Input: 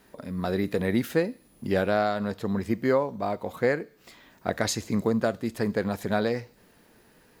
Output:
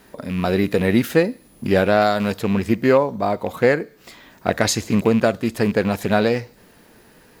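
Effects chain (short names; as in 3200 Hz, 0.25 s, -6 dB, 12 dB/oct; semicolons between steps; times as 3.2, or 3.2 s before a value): rattling part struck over -31 dBFS, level -31 dBFS; 2.01–2.41 high shelf 5100 Hz +9 dB; gain +8 dB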